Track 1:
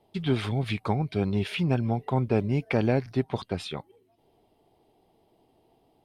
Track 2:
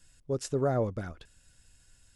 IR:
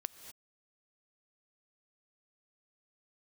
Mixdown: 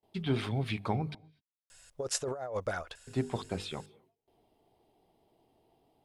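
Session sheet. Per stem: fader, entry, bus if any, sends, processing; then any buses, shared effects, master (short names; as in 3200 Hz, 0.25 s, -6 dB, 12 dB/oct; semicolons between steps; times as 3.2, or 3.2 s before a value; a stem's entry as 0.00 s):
-5.5 dB, 0.00 s, muted 1.15–3.07, send -12.5 dB, notches 50/100/150/200/250/300/350/400/450/500 Hz; gate with hold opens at -57 dBFS
+2.0 dB, 1.70 s, no send, resonant low shelf 410 Hz -12.5 dB, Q 1.5; negative-ratio compressor -37 dBFS, ratio -1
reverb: on, pre-delay 3 ms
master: dry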